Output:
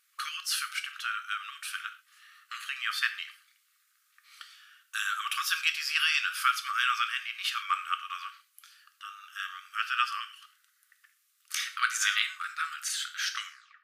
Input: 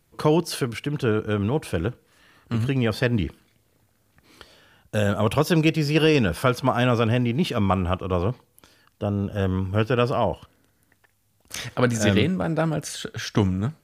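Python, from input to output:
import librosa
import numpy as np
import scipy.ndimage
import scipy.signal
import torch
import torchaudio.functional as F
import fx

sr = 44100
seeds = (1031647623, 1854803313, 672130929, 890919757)

y = fx.tape_stop_end(x, sr, length_s=0.39)
y = fx.brickwall_highpass(y, sr, low_hz=1100.0)
y = fx.rev_gated(y, sr, seeds[0], gate_ms=150, shape='falling', drr_db=7.0)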